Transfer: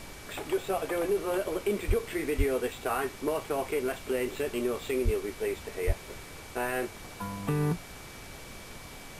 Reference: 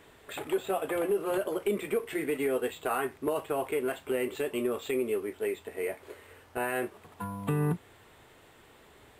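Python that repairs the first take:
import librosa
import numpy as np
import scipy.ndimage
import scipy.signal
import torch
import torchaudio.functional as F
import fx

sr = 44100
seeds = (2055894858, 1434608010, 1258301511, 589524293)

y = fx.notch(x, sr, hz=2300.0, q=30.0)
y = fx.fix_deplosive(y, sr, at_s=(1.87, 2.37, 5.04, 5.86))
y = fx.noise_reduce(y, sr, print_start_s=7.8, print_end_s=8.3, reduce_db=12.0)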